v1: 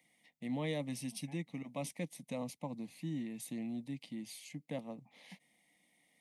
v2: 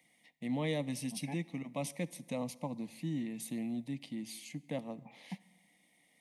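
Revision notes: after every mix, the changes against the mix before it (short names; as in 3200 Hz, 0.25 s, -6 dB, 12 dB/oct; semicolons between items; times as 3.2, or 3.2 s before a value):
second voice +9.5 dB; reverb: on, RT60 1.2 s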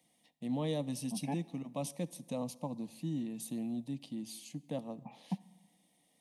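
second voice +7.0 dB; master: add bell 2100 Hz -15 dB 0.44 oct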